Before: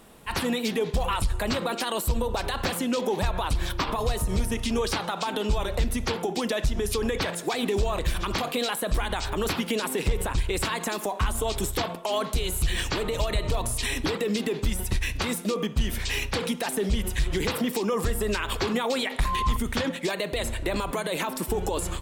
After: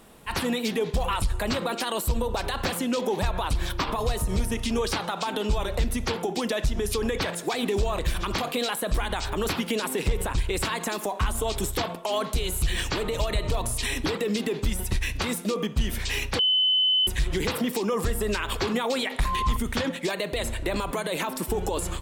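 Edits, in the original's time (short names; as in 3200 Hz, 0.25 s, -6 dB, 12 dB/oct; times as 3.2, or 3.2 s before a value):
16.39–17.07 bleep 3030 Hz -18.5 dBFS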